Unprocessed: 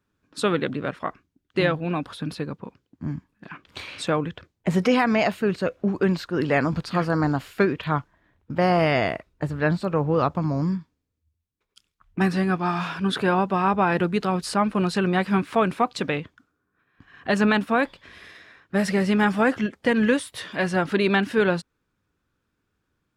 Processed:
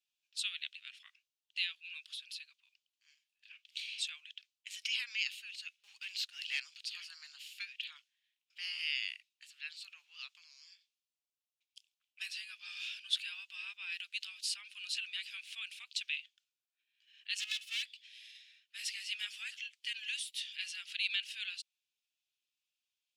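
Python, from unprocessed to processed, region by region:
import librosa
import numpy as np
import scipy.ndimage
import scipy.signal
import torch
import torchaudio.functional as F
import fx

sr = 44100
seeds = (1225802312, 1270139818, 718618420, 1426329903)

y = fx.chain(x, sr, fx.leveller(passes=1),
    fx.small_body(hz=(250.0, 450.0, 830.0), ring_ms=45, db=15), at=(5.77, 6.6))
y = fx.chain(y, sr, fx.lower_of_two(delay_ms=2.3),
    fx.band_squash(depth_pct=70), at=(17.38, 17.83))
y = scipy.signal.sosfilt(scipy.signal.cheby1(4, 1.0, 2700.0, 'highpass', fs=sr, output='sos'), y)
y = fx.high_shelf(y, sr, hz=7200.0, db=-9.0)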